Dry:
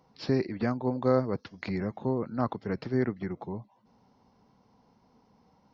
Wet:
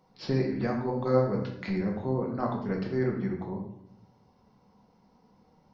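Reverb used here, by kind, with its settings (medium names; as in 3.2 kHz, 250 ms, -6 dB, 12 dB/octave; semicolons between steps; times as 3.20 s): simulated room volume 150 m³, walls mixed, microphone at 1 m; trim -3 dB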